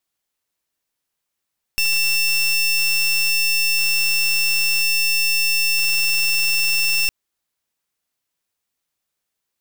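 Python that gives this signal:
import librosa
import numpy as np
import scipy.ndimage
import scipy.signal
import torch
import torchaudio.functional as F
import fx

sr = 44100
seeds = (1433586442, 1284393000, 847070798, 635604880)

y = fx.pulse(sr, length_s=5.31, hz=2700.0, level_db=-18.0, duty_pct=23)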